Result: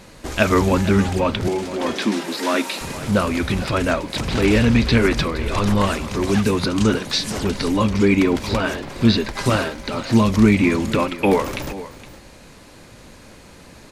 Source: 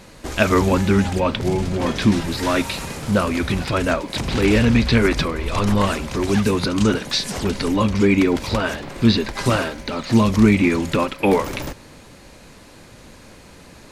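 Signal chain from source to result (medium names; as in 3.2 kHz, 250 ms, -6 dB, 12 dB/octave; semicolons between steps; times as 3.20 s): 1.48–2.81 s: high-pass 240 Hz 24 dB/octave; delay 465 ms -15.5 dB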